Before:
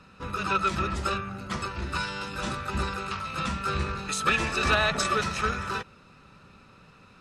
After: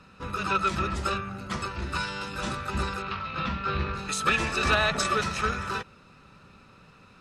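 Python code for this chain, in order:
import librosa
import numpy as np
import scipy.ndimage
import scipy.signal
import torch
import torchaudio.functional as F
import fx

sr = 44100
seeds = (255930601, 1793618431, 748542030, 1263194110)

y = fx.lowpass(x, sr, hz=4300.0, slope=24, at=(3.02, 3.94))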